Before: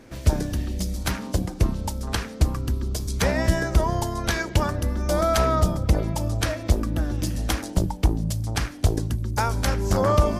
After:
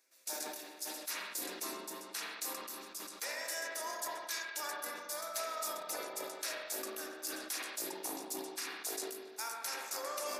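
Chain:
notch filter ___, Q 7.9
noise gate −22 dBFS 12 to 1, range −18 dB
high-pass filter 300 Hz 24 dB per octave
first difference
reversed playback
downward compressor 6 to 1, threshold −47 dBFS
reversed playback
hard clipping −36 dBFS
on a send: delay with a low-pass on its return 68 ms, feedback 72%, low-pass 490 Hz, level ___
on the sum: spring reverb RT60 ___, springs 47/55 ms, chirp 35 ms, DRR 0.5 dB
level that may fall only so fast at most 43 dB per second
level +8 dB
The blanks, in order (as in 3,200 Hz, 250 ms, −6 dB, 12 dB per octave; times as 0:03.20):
3,100 Hz, −3.5 dB, 2.3 s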